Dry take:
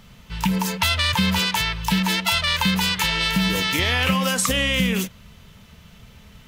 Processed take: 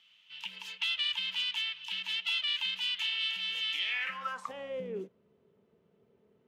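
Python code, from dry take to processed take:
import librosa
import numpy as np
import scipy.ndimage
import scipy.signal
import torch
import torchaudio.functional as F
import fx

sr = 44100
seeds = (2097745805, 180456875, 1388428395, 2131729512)

p1 = scipy.signal.sosfilt(scipy.signal.butter(2, 100.0, 'highpass', fs=sr, output='sos'), x)
p2 = 10.0 ** (-20.5 / 20.0) * np.tanh(p1 / 10.0 ** (-20.5 / 20.0))
p3 = p1 + (p2 * librosa.db_to_amplitude(-3.0))
p4 = fx.filter_sweep_bandpass(p3, sr, from_hz=3000.0, to_hz=400.0, start_s=3.81, end_s=4.93, q=4.9)
y = p4 * librosa.db_to_amplitude(-7.5)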